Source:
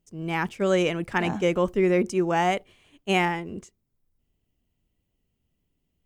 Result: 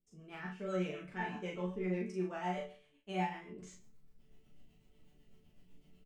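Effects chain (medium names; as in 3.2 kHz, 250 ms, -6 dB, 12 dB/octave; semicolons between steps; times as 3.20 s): treble shelf 5.8 kHz -10.5 dB; reverse; upward compressor, threshold -27 dBFS; reverse; chord resonator D3 major, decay 0.38 s; rotary cabinet horn 8 Hz; doubling 39 ms -3 dB; trim +2 dB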